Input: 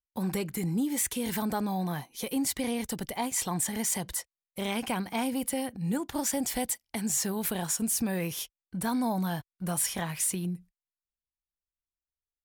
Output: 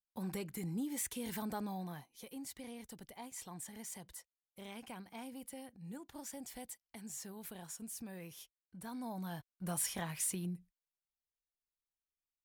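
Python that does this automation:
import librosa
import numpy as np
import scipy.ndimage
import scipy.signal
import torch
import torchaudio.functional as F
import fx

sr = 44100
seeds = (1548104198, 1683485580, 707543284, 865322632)

y = fx.gain(x, sr, db=fx.line((1.65, -10.0), (2.29, -17.5), (8.78, -17.5), (9.7, -7.5)))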